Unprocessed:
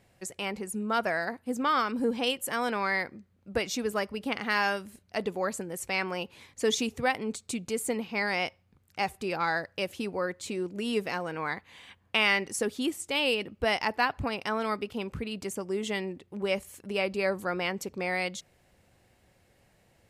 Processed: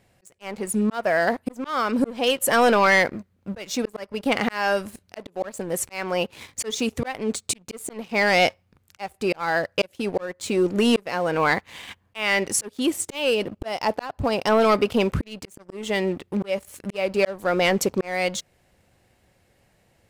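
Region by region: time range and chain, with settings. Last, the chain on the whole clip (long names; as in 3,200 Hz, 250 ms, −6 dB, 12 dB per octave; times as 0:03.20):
0:13.30–0:14.63: parametric band 2,000 Hz −6.5 dB 1.1 octaves + one half of a high-frequency compander decoder only
whole clip: dynamic equaliser 590 Hz, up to +6 dB, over −45 dBFS, Q 2.1; volume swells 543 ms; leveller curve on the samples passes 2; level +6 dB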